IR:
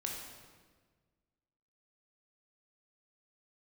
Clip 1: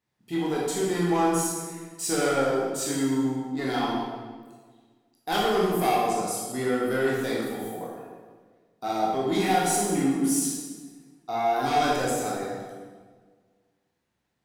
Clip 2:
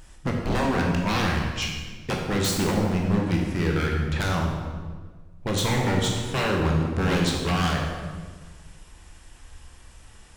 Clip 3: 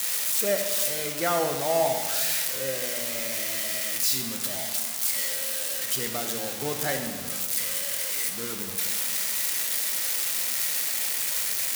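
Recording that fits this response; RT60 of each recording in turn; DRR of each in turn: 2; 1.5 s, 1.5 s, 1.5 s; -5.5 dB, -1.0 dB, 4.5 dB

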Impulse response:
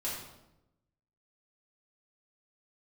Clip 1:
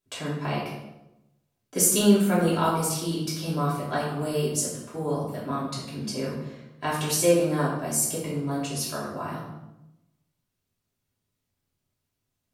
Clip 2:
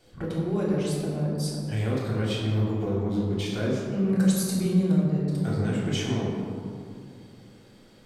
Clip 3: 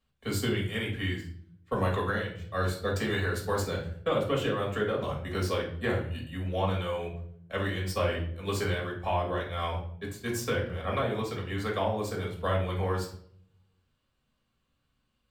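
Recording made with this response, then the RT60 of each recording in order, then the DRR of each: 1; 0.90 s, 2.4 s, 0.65 s; -8.0 dB, -6.0 dB, -3.0 dB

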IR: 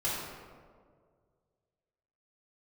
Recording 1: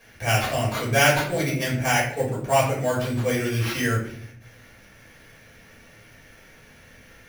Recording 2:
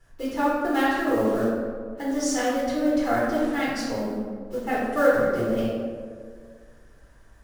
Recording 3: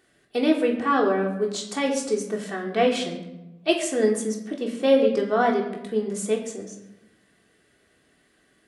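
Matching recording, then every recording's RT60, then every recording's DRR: 2; 0.55 s, 1.9 s, 0.95 s; -7.0 dB, -8.5 dB, -0.5 dB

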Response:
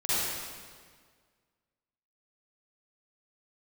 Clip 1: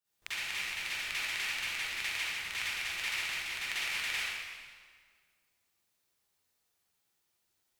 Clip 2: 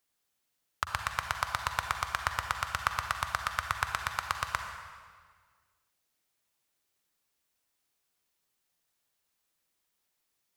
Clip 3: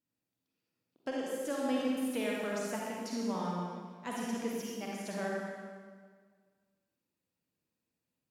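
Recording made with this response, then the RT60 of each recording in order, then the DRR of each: 1; 1.7 s, 1.7 s, 1.7 s; -13.0 dB, 5.0 dB, -4.0 dB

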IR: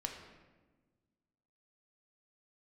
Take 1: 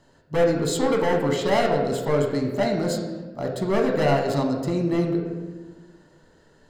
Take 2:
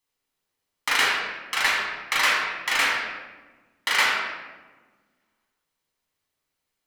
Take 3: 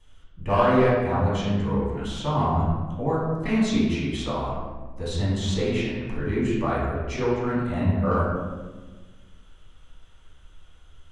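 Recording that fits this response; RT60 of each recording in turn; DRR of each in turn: 1; 1.3 s, 1.3 s, 1.3 s; 1.5 dB, -5.0 dB, -9.5 dB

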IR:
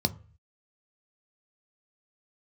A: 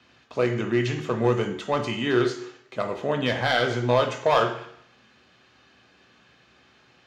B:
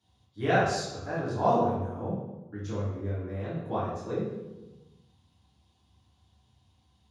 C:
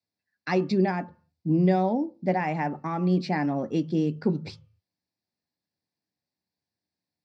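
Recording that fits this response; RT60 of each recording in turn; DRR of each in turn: C; 0.70 s, 1.1 s, 0.40 s; 4.0 dB, -10.5 dB, 9.5 dB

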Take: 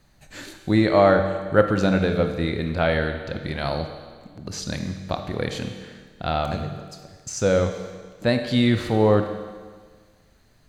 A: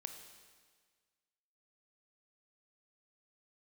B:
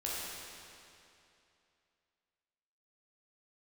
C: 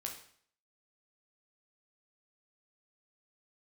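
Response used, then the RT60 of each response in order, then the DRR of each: A; 1.6 s, 2.7 s, 0.55 s; 6.0 dB, -7.0 dB, 0.5 dB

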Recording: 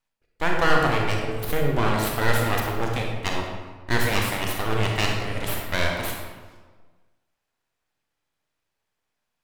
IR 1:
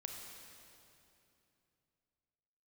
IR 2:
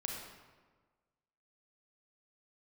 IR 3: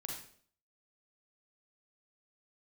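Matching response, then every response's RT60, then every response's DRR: 2; 2.8 s, 1.4 s, 0.55 s; 1.5 dB, 0.0 dB, -1.0 dB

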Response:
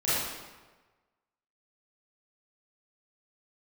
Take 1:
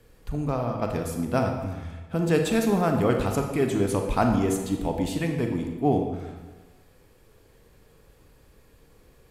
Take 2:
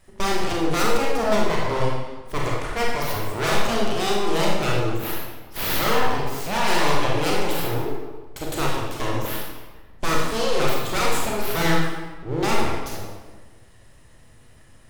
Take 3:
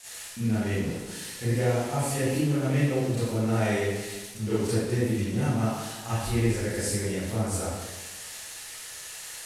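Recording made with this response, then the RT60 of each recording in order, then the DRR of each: 3; 1.3 s, 1.3 s, 1.3 s; 3.0 dB, -3.5 dB, -12.5 dB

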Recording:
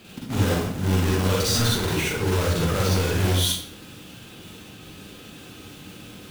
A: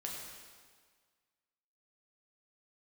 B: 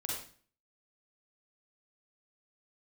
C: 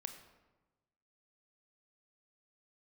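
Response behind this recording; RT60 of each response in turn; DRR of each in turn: B; 1.7 s, 0.45 s, 1.2 s; -2.5 dB, -3.5 dB, 6.5 dB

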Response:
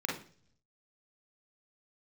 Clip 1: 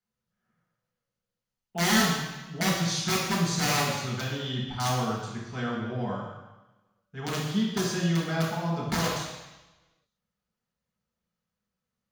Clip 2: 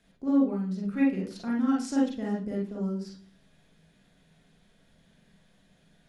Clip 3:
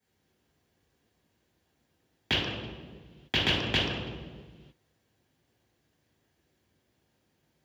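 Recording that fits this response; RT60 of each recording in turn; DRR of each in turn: 2; 1.0 s, 0.45 s, no single decay rate; -6.0 dB, -3.0 dB, -10.5 dB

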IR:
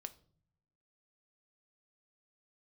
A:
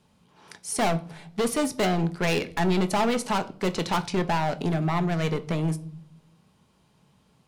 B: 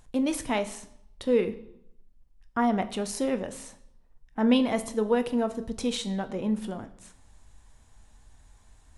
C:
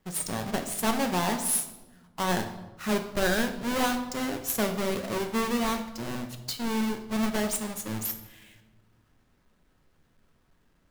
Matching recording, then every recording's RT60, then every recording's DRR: A; no single decay rate, 0.75 s, 1.2 s; 9.5 dB, 9.5 dB, 5.5 dB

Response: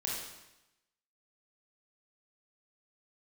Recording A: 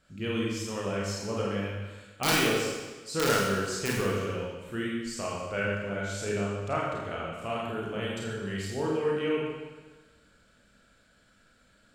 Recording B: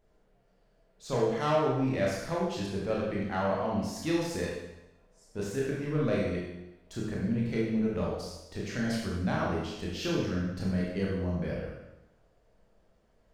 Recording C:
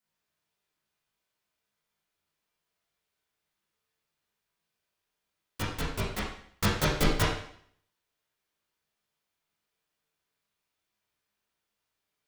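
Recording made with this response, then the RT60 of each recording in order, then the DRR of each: B; 1.3 s, 0.95 s, 0.60 s; -5.0 dB, -4.5 dB, -8.0 dB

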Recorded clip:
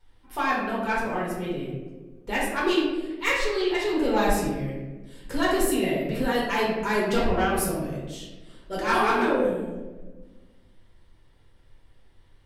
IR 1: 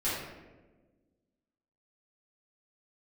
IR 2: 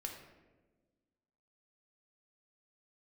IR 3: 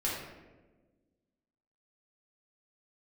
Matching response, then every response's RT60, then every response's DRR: 3; 1.3 s, 1.3 s, 1.3 s; -11.5 dB, 1.5 dB, -6.0 dB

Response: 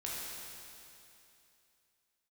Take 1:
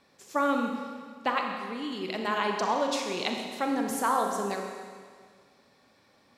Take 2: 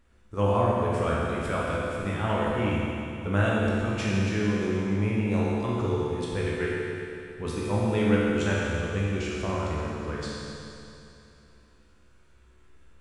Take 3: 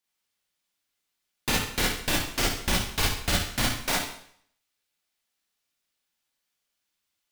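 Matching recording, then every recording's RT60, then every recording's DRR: 2; 1.8 s, 2.8 s, 0.65 s; 2.0 dB, -6.0 dB, -4.5 dB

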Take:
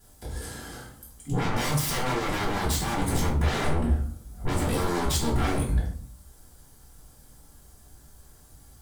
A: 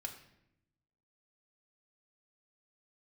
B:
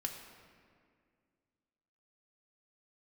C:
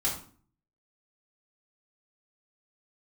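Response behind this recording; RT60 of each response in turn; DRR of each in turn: C; 0.80 s, 2.1 s, 0.45 s; 2.5 dB, 1.5 dB, -6.0 dB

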